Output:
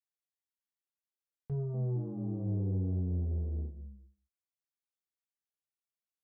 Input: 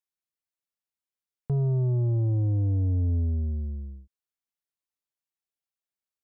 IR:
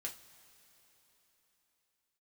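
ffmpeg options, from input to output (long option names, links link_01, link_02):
-filter_complex "[0:a]asettb=1/sr,asplit=3[link_01][link_02][link_03];[link_01]atrim=end=1.524[link_04];[link_02]atrim=start=1.52:end=3.66,asetpts=PTS-STARTPTS,afade=type=in:duration=0.004:curve=qsin,afade=type=out:start_time=2.136:duration=0.004:curve=qsin,asplit=6[link_05][link_06][link_07][link_08][link_09][link_10];[link_06]adelay=216,afreqshift=85,volume=-8.5dB[link_11];[link_07]adelay=432,afreqshift=170,volume=-14.9dB[link_12];[link_08]adelay=648,afreqshift=255,volume=-21.3dB[link_13];[link_09]adelay=864,afreqshift=340,volume=-27.6dB[link_14];[link_10]adelay=1080,afreqshift=425,volume=-34dB[link_15];[link_05][link_11][link_12][link_13][link_14][link_15]amix=inputs=6:normalize=0,atrim=end_sample=94374[link_16];[link_03]atrim=start=3.656[link_17];[link_04][link_16]acrossfade=duration=0.004:curve1=hsin:curve2=qsin[link_18];[link_18][link_17]acrossfade=duration=0.004:curve1=qsin:curve2=hsin[link_19];[1:a]atrim=start_sample=2205,afade=type=out:start_time=0.27:duration=0.01,atrim=end_sample=12348[link_20];[link_19][link_20]afir=irnorm=-1:irlink=0,volume=-6.5dB"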